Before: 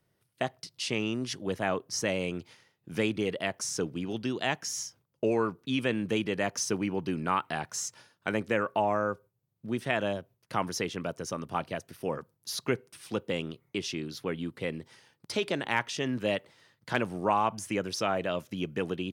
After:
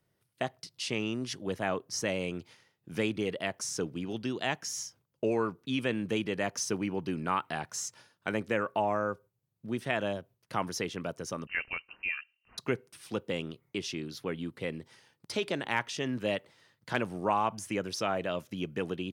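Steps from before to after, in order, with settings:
0:11.47–0:12.58: voice inversion scrambler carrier 2,900 Hz
level −2 dB

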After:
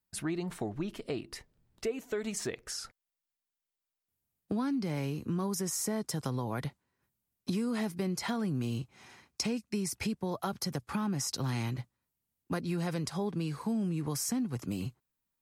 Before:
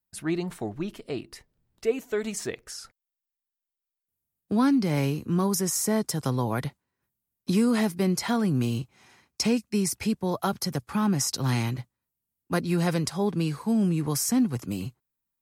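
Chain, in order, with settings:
high-shelf EQ 11,000 Hz −5 dB
in parallel at −2.5 dB: brickwall limiter −20 dBFS, peak gain reduction 8 dB
on the sum: downward compressor 3 to 1, threshold −30 dBFS, peak gain reduction 11 dB
level −3 dB

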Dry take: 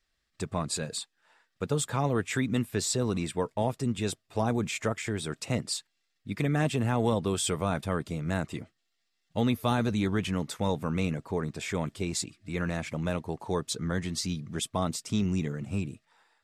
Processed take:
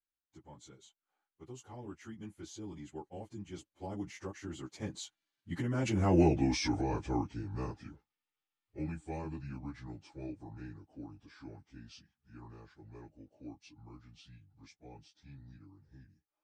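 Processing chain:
phase-vocoder pitch shift without resampling −5 semitones
source passing by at 0:06.19, 43 m/s, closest 8.8 metres
in parallel at −3 dB: compressor whose output falls as the input rises −42 dBFS, ratio −0.5
on the sum: hollow resonant body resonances 310/830 Hz, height 10 dB, ringing for 45 ms

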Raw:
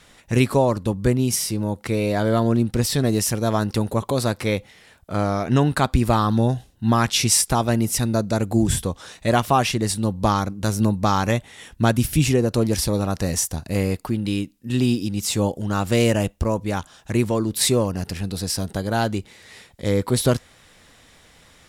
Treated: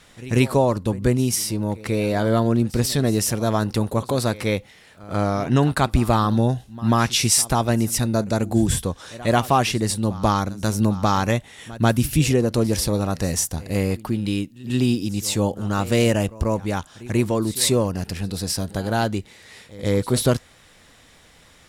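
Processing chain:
echo ahead of the sound 140 ms −19 dB

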